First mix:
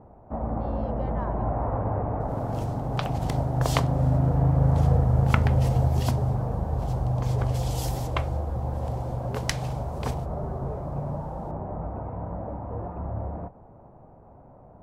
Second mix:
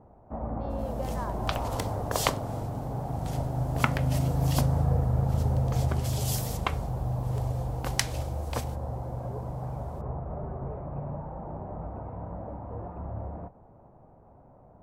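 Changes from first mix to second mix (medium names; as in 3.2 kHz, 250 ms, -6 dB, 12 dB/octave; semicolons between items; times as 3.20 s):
first sound -4.5 dB; second sound: entry -1.50 s; master: add treble shelf 7.5 kHz +8.5 dB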